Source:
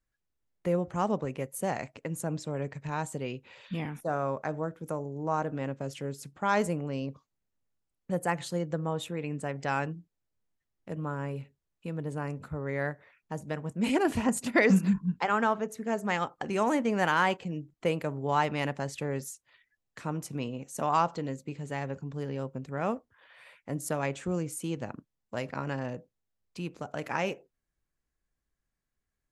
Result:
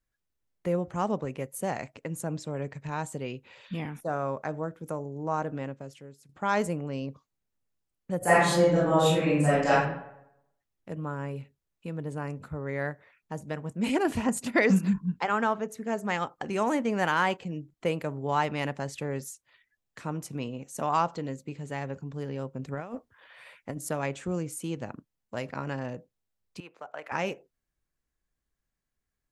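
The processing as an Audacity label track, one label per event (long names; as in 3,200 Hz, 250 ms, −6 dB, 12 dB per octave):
5.570000	6.290000	fade out quadratic, to −14.5 dB
8.180000	9.700000	thrown reverb, RT60 0.81 s, DRR −11 dB
22.590000	23.780000	compressor whose output falls as the input rises −34 dBFS, ratio −0.5
26.600000	27.120000	three-way crossover with the lows and the highs turned down lows −22 dB, under 500 Hz, highs −14 dB, over 2,900 Hz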